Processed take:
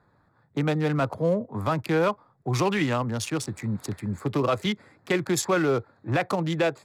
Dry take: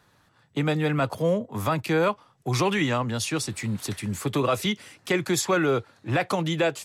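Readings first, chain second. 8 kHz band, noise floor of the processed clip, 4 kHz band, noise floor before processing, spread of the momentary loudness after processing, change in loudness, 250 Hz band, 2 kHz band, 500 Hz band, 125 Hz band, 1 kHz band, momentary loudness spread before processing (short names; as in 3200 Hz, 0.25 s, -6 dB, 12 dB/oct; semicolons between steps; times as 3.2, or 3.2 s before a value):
-3.0 dB, -65 dBFS, -3.5 dB, -63 dBFS, 7 LU, -0.5 dB, 0.0 dB, -2.0 dB, -0.5 dB, 0.0 dB, -1.0 dB, 7 LU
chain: Wiener smoothing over 15 samples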